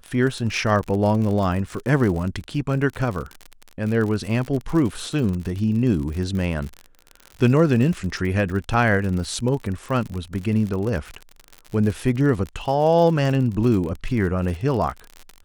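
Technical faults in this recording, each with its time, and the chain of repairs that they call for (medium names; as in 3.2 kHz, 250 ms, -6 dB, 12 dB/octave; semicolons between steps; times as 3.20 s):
crackle 54 per s -27 dBFS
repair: de-click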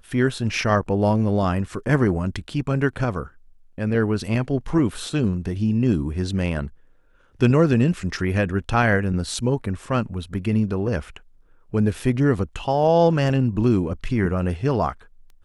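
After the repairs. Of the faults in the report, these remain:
nothing left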